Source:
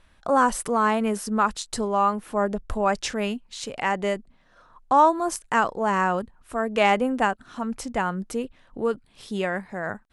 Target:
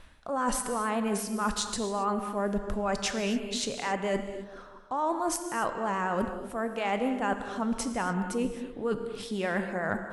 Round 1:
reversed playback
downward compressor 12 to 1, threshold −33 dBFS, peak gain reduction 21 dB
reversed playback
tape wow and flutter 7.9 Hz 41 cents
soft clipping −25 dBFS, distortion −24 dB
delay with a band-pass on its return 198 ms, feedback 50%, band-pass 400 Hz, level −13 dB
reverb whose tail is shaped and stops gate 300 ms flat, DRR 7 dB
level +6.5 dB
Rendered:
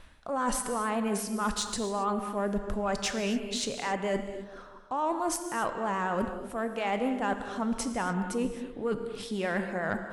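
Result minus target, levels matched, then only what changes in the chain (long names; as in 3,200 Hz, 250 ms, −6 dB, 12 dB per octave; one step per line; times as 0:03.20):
soft clipping: distortion +12 dB
change: soft clipping −18 dBFS, distortion −36 dB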